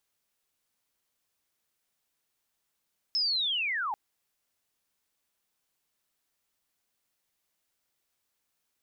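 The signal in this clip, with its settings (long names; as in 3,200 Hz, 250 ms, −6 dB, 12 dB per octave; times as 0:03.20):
glide linear 5,300 Hz → 780 Hz −24.5 dBFS → −29 dBFS 0.79 s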